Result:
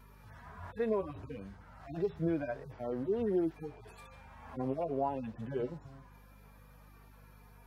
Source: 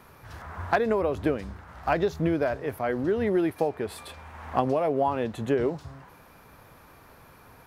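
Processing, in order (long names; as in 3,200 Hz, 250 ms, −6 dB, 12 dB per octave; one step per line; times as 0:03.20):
harmonic-percussive split with one part muted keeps harmonic
high-pass filter 110 Hz 12 dB per octave
mains hum 50 Hz, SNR 20 dB
level −6.5 dB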